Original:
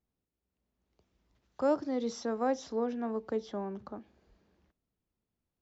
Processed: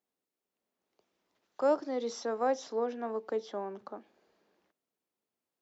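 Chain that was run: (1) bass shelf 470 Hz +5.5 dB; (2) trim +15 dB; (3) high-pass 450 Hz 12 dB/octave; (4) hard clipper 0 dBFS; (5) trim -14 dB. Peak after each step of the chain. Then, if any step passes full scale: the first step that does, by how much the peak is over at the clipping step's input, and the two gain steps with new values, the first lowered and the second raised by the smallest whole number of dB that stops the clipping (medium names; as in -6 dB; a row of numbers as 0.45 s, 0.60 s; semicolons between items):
-16.0 dBFS, -1.0 dBFS, -5.0 dBFS, -5.0 dBFS, -19.0 dBFS; nothing clips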